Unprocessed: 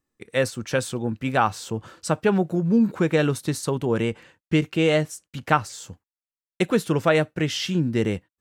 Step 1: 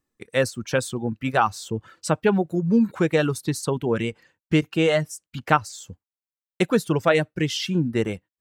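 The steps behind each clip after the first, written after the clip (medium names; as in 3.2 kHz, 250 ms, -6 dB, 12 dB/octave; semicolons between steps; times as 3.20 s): reverb removal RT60 0.98 s; trim +1 dB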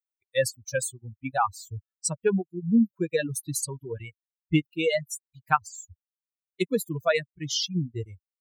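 expander on every frequency bin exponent 3; tone controls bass +1 dB, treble +10 dB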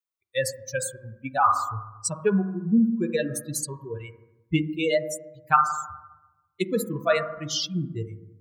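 on a send at -9 dB: resonant low-pass 1.2 kHz, resonance Q 9.6 + reverberation RT60 1.0 s, pre-delay 5 ms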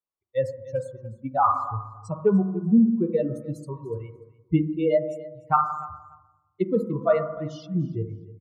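Savitzky-Golay filter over 65 samples; feedback delay 295 ms, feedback 16%, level -19 dB; trim +2.5 dB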